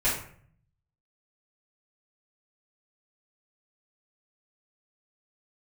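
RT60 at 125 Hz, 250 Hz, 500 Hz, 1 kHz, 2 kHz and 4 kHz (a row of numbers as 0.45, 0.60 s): 1.1, 0.80, 0.55, 0.50, 0.50, 0.35 s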